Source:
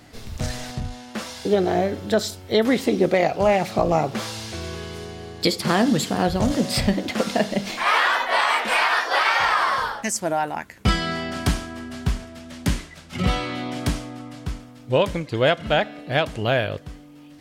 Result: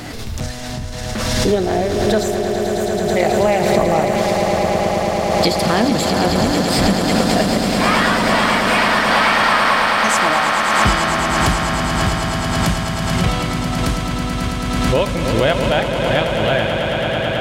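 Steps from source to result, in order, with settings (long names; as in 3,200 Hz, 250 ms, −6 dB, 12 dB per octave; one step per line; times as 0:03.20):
time-frequency box erased 0:02.23–0:03.16, 210–5,800 Hz
echo that builds up and dies away 109 ms, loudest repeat 8, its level −9 dB
background raised ahead of every attack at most 24 dB per second
level +1.5 dB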